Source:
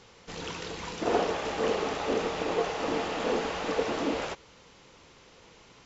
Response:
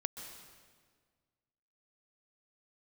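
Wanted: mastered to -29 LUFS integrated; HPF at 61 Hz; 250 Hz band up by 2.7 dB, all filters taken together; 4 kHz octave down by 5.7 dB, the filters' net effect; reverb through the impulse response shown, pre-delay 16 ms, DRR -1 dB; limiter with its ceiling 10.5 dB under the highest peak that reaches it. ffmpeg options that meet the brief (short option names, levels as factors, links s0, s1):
-filter_complex "[0:a]highpass=61,equalizer=f=250:t=o:g=3.5,equalizer=f=4000:t=o:g=-8,alimiter=limit=0.0944:level=0:latency=1,asplit=2[s0][s1];[1:a]atrim=start_sample=2205,adelay=16[s2];[s1][s2]afir=irnorm=-1:irlink=0,volume=1.12[s3];[s0][s3]amix=inputs=2:normalize=0,volume=0.891"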